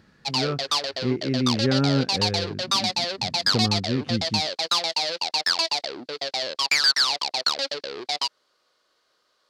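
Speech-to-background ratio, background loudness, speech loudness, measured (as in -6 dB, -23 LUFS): -3.5 dB, -24.0 LUFS, -27.5 LUFS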